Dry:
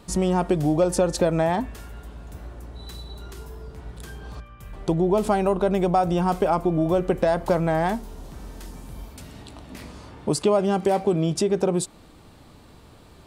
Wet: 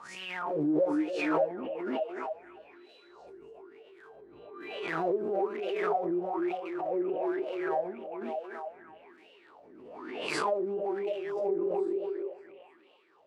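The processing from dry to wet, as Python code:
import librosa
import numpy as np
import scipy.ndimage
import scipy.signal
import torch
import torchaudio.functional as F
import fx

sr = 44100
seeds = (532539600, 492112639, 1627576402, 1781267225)

p1 = fx.spec_blur(x, sr, span_ms=98.0)
p2 = scipy.signal.sosfilt(scipy.signal.butter(2, 85.0, 'highpass', fs=sr, output='sos'), p1)
p3 = (np.mod(10.0 ** (19.5 / 20.0) * p2 + 1.0, 2.0) - 1.0) / 10.0 ** (19.5 / 20.0)
p4 = p2 + (p3 * 10.0 ** (-11.0 / 20.0))
p5 = fx.wah_lfo(p4, sr, hz=1.1, low_hz=340.0, high_hz=2900.0, q=11.0)
p6 = fx.doubler(p5, sr, ms=13.0, db=-4.0, at=(0.45, 1.51))
p7 = p6 + fx.echo_stepped(p6, sr, ms=293, hz=320.0, octaves=0.7, feedback_pct=70, wet_db=-0.5, dry=0)
y = fx.pre_swell(p7, sr, db_per_s=34.0)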